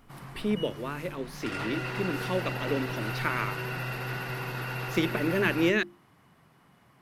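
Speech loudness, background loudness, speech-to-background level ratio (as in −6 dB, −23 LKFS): −31.0 LKFS, −35.0 LKFS, 4.0 dB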